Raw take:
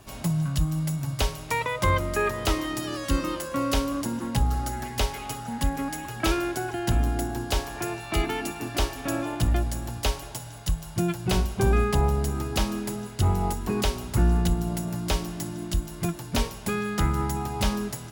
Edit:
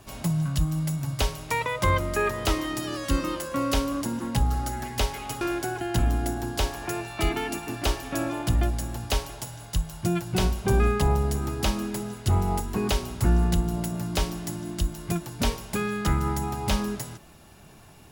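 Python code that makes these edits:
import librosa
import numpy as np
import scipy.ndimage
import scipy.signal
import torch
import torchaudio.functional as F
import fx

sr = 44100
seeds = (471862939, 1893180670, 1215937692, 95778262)

y = fx.edit(x, sr, fx.cut(start_s=5.41, length_s=0.93), tone=tone)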